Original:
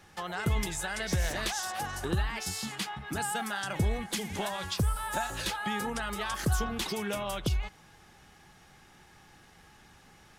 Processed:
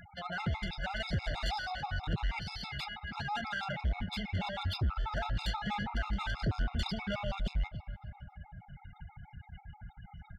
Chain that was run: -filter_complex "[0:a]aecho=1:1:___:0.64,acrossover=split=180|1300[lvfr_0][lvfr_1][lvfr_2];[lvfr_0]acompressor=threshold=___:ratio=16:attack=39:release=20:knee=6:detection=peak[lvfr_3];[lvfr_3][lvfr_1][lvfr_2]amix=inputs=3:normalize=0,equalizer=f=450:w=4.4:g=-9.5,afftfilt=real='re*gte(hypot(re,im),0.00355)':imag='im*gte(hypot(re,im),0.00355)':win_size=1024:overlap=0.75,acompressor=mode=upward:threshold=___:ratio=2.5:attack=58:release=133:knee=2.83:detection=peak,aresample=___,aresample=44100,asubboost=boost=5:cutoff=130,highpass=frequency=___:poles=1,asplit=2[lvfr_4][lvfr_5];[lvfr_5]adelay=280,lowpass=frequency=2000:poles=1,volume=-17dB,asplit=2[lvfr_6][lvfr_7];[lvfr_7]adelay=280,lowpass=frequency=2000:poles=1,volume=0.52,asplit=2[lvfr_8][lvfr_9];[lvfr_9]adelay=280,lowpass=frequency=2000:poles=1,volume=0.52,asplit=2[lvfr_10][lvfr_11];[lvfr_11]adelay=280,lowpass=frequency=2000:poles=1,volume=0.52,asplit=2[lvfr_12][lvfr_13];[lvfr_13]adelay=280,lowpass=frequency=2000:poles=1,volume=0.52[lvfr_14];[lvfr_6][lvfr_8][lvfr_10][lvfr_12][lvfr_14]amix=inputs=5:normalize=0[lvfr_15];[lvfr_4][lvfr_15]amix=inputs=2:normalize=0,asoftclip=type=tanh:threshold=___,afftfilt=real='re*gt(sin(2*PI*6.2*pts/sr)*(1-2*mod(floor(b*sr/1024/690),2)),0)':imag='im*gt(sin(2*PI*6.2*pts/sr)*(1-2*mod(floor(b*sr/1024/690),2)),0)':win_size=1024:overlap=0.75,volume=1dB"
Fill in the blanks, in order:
1.4, -36dB, -50dB, 11025, 49, -26.5dB